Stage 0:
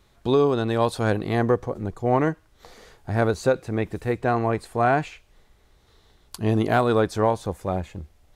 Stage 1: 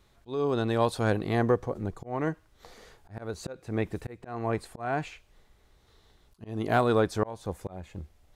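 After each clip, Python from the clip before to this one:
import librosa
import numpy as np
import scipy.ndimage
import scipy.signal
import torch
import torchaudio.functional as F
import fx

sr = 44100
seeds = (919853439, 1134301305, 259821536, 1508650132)

y = fx.auto_swell(x, sr, attack_ms=323.0)
y = y * 10.0 ** (-3.5 / 20.0)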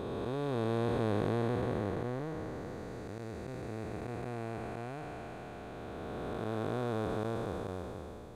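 y = fx.spec_blur(x, sr, span_ms=1450.0)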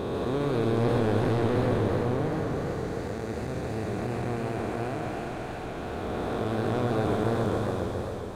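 y = fx.leveller(x, sr, passes=2)
y = fx.echo_warbled(y, sr, ms=135, feedback_pct=70, rate_hz=2.8, cents=170, wet_db=-5.0)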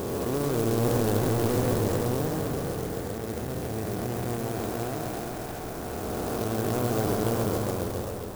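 y = fx.clock_jitter(x, sr, seeds[0], jitter_ms=0.077)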